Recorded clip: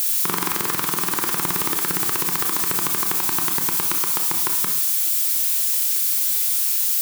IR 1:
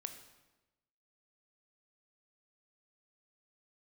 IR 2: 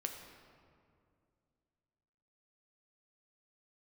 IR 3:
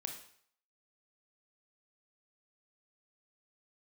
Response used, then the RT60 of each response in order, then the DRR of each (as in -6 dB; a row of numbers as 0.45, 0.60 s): 3; 1.1, 2.3, 0.60 s; 7.0, 3.0, 3.5 dB